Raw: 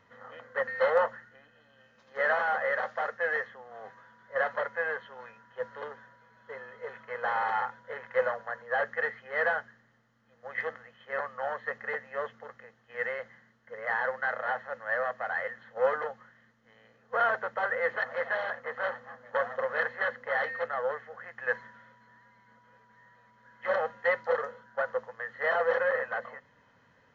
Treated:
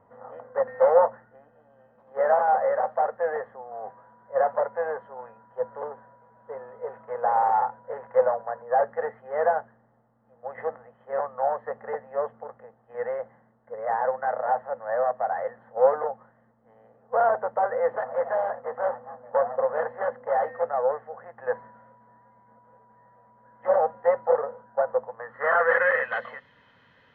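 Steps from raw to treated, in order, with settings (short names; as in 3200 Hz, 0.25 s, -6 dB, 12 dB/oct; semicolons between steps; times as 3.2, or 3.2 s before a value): low-pass sweep 780 Hz -> 3400 Hz, 25.11–26.2; gain +3 dB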